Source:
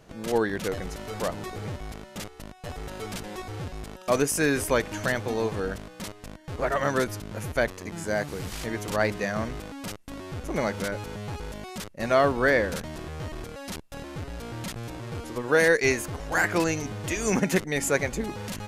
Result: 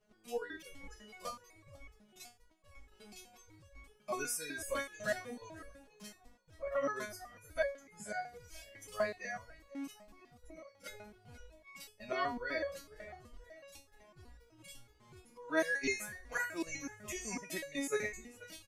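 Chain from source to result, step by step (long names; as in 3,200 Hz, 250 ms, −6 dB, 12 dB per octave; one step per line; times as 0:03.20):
noise reduction from a noise print of the clip's start 13 dB
0:09.50–0:10.86: downward compressor 12 to 1, threshold −38 dBFS, peak gain reduction 14.5 dB
shaped tremolo saw down 2.4 Hz, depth 55%
echo with shifted repeats 482 ms, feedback 36%, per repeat +47 Hz, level −19 dB
step-sequenced resonator 8 Hz 210–560 Hz
level +6 dB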